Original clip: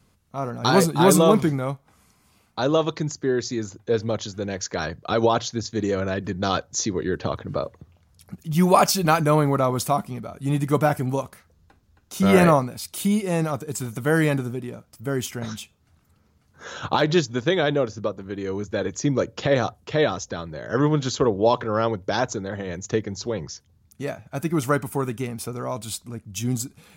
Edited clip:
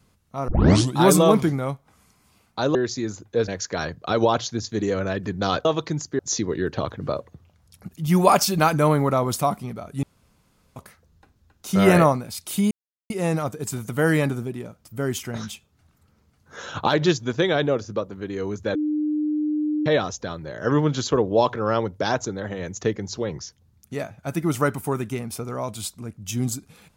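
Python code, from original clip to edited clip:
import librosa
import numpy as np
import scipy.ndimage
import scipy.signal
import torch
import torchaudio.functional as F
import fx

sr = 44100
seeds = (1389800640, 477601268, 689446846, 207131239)

y = fx.edit(x, sr, fx.tape_start(start_s=0.48, length_s=0.49),
    fx.move(start_s=2.75, length_s=0.54, to_s=6.66),
    fx.cut(start_s=4.02, length_s=0.47),
    fx.room_tone_fill(start_s=10.5, length_s=0.73),
    fx.insert_silence(at_s=13.18, length_s=0.39),
    fx.bleep(start_s=18.83, length_s=1.11, hz=302.0, db=-20.5), tone=tone)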